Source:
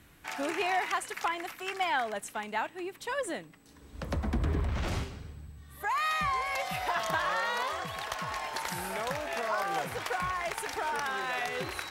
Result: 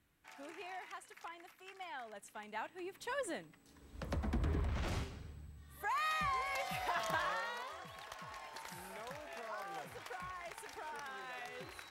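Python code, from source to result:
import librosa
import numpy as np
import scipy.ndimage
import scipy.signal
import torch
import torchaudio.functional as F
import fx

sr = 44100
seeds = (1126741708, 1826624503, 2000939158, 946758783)

y = fx.gain(x, sr, db=fx.line((1.91, -18.0), (2.98, -6.5), (7.23, -6.5), (7.65, -14.0)))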